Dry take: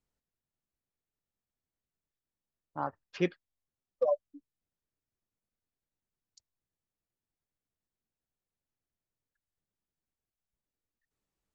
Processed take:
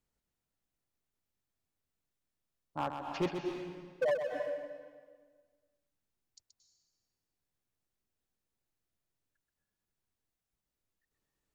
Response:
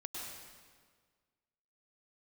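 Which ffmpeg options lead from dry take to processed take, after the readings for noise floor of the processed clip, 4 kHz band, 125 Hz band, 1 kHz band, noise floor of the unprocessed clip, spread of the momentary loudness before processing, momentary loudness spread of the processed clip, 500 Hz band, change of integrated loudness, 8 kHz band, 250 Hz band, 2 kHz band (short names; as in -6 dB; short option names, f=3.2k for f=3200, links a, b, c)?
under -85 dBFS, +2.0 dB, -1.5 dB, +0.5 dB, under -85 dBFS, 8 LU, 14 LU, -0.5 dB, -3.0 dB, n/a, -0.5 dB, +2.5 dB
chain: -filter_complex "[0:a]asoftclip=type=hard:threshold=-27.5dB,asplit=2[a][b];[1:a]atrim=start_sample=2205,adelay=128[c];[b][c]afir=irnorm=-1:irlink=0,volume=-2dB[d];[a][d]amix=inputs=2:normalize=0,volume=1dB"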